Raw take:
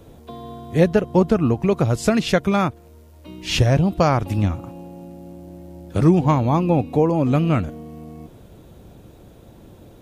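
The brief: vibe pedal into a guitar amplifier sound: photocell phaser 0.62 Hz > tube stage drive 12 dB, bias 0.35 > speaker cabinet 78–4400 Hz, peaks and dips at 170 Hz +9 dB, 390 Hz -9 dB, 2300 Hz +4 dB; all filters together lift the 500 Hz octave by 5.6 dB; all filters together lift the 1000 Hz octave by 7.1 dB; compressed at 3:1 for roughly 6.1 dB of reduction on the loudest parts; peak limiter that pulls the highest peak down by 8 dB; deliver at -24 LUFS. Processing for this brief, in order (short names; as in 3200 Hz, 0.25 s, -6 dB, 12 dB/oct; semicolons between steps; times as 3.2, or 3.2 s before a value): bell 500 Hz +8 dB; bell 1000 Hz +6.5 dB; compressor 3:1, threshold -13 dBFS; limiter -10 dBFS; photocell phaser 0.62 Hz; tube stage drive 12 dB, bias 0.35; speaker cabinet 78–4400 Hz, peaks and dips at 170 Hz +9 dB, 390 Hz -9 dB, 2300 Hz +4 dB; gain +0.5 dB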